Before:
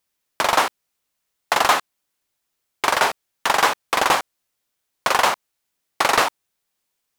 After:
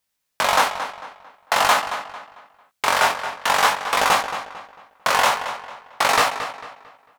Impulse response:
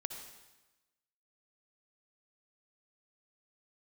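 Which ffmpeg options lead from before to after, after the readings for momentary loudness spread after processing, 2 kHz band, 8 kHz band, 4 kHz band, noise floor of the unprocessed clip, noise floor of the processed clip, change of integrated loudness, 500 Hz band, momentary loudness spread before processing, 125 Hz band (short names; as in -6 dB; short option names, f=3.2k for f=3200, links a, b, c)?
20 LU, +1.0 dB, +0.5 dB, +1.0 dB, -77 dBFS, -77 dBFS, 0.0 dB, 0.0 dB, 7 LU, +1.0 dB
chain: -filter_complex "[0:a]equalizer=f=350:t=o:w=0.33:g=-12,flanger=delay=18.5:depth=5.2:speed=0.49,asplit=2[a][b];[b]adelay=224,lowpass=f=4.2k:p=1,volume=-10dB,asplit=2[c][d];[d]adelay=224,lowpass=f=4.2k:p=1,volume=0.36,asplit=2[e][f];[f]adelay=224,lowpass=f=4.2k:p=1,volume=0.36,asplit=2[g][h];[h]adelay=224,lowpass=f=4.2k:p=1,volume=0.36[i];[c][e][g][i]amix=inputs=4:normalize=0[j];[a][j]amix=inputs=2:normalize=0,volume=3.5dB"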